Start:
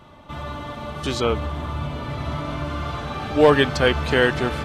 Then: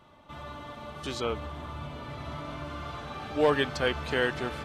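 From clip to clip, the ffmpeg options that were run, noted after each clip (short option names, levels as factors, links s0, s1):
-af "lowshelf=f=240:g=-4.5,volume=0.376"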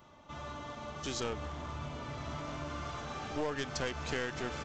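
-af "acompressor=threshold=0.0398:ratio=10,aresample=16000,aeval=exprs='clip(val(0),-1,0.015)':c=same,aresample=44100,aexciter=amount=3.2:drive=3:freq=5400,volume=0.841"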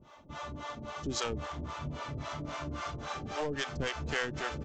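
-filter_complex "[0:a]acrossover=split=480[s0][s1];[s0]aeval=exprs='val(0)*(1-1/2+1/2*cos(2*PI*3.7*n/s))':c=same[s2];[s1]aeval=exprs='val(0)*(1-1/2-1/2*cos(2*PI*3.7*n/s))':c=same[s3];[s2][s3]amix=inputs=2:normalize=0,volume=2.11"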